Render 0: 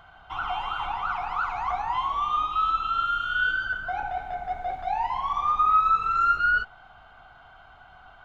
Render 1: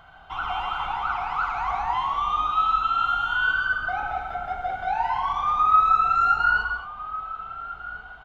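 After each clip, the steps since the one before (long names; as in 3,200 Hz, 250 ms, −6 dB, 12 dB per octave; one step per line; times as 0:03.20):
slap from a distant wall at 240 metres, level −11 dB
reverb whose tail is shaped and stops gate 250 ms flat, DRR 4.5 dB
level +1 dB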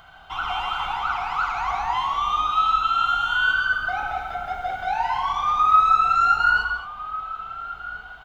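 high-shelf EQ 3,000 Hz +11 dB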